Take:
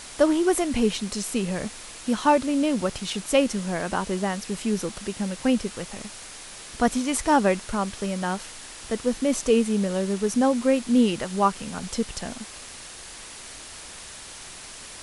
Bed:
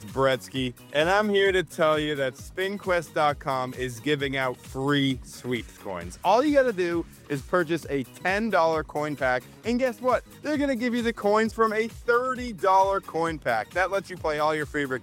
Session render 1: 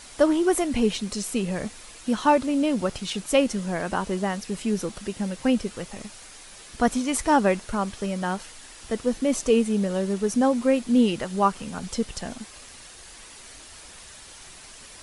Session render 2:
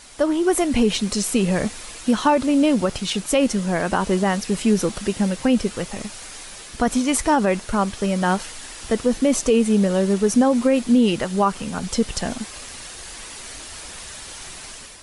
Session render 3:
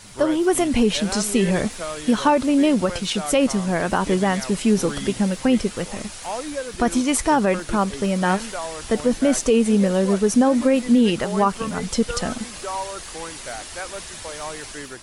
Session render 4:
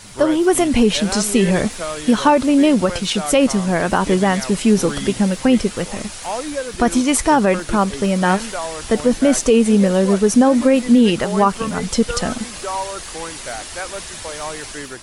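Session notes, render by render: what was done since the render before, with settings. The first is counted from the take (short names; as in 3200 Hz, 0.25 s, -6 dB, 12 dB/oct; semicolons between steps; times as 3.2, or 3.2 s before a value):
denoiser 6 dB, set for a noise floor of -42 dBFS
AGC gain up to 8.5 dB; limiter -8.5 dBFS, peak gain reduction 6.5 dB
add bed -9 dB
gain +4 dB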